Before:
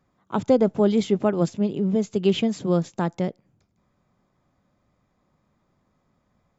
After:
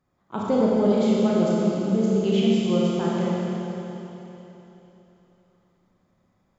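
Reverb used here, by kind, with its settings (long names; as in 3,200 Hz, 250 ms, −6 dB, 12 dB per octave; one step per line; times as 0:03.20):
four-comb reverb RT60 3.5 s, combs from 28 ms, DRR −6 dB
level −6.5 dB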